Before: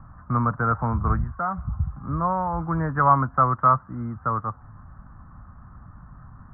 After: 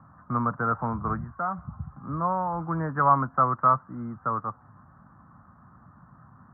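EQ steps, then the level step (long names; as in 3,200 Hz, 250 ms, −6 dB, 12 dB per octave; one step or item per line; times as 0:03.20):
band-pass filter 150–2,000 Hz
−2.0 dB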